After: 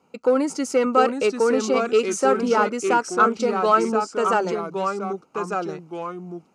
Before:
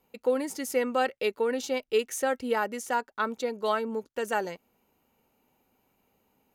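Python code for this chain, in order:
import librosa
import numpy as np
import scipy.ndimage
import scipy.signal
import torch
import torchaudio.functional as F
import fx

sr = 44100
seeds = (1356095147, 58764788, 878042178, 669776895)

p1 = np.clip(x, -10.0 ** (-23.5 / 20.0), 10.0 ** (-23.5 / 20.0))
p2 = x + F.gain(torch.from_numpy(p1), -3.0).numpy()
p3 = fx.echo_pitch(p2, sr, ms=671, semitones=-2, count=2, db_per_echo=-6.0)
p4 = fx.cabinet(p3, sr, low_hz=120.0, low_slope=12, high_hz=8100.0, hz=(160.0, 290.0, 1300.0, 1800.0, 3500.0), db=(5, 3, 9, -10, -9))
y = F.gain(torch.from_numpy(p4), 3.0).numpy()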